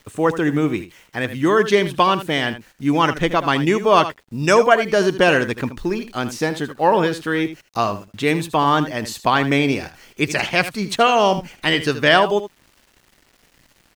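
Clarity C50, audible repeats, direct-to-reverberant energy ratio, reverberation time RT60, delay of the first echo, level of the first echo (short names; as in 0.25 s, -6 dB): none, 1, none, none, 78 ms, -12.5 dB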